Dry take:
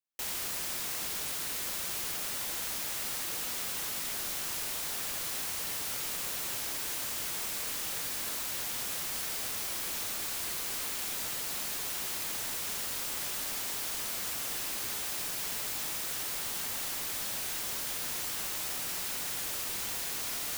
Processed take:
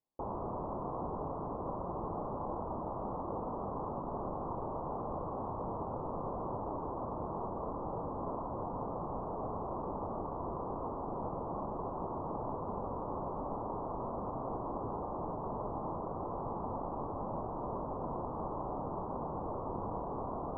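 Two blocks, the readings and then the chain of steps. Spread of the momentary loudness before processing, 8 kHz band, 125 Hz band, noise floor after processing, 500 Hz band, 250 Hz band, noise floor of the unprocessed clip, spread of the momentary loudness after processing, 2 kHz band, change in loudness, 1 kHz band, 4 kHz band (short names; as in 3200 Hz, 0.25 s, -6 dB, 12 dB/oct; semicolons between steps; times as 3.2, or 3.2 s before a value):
0 LU, under -40 dB, +10.0 dB, -40 dBFS, +10.0 dB, +10.0 dB, -36 dBFS, 1 LU, under -25 dB, -7.0 dB, +8.0 dB, under -40 dB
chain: steep low-pass 1100 Hz 72 dB/oct; gain +10 dB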